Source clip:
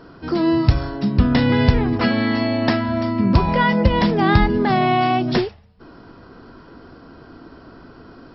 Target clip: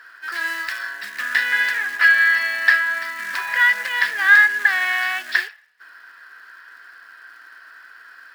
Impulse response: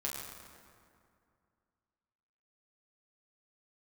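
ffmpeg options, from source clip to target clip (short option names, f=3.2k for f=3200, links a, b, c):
-af "acontrast=76,acrusher=bits=5:mode=log:mix=0:aa=0.000001,highpass=f=1.7k:t=q:w=12,volume=-8.5dB"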